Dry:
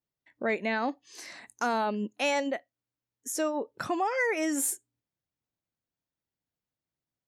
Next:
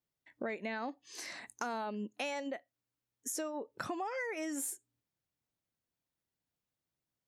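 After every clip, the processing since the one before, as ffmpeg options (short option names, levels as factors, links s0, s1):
-af "acompressor=threshold=0.0158:ratio=6"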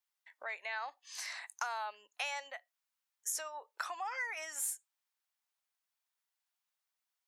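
-af "highpass=f=810:w=0.5412,highpass=f=810:w=1.3066,volume=1.33"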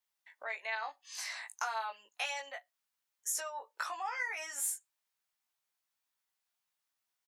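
-filter_complex "[0:a]asplit=2[s0][s1];[s1]adelay=18,volume=0.708[s2];[s0][s2]amix=inputs=2:normalize=0"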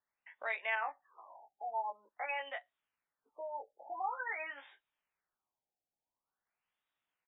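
-af "afftfilt=real='re*lt(b*sr/1024,840*pow(3900/840,0.5+0.5*sin(2*PI*0.47*pts/sr)))':imag='im*lt(b*sr/1024,840*pow(3900/840,0.5+0.5*sin(2*PI*0.47*pts/sr)))':win_size=1024:overlap=0.75,volume=1.33"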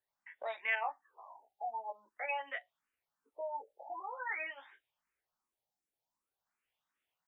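-filter_complex "[0:a]asplit=2[s0][s1];[s1]afreqshift=2.7[s2];[s0][s2]amix=inputs=2:normalize=1,volume=1.5"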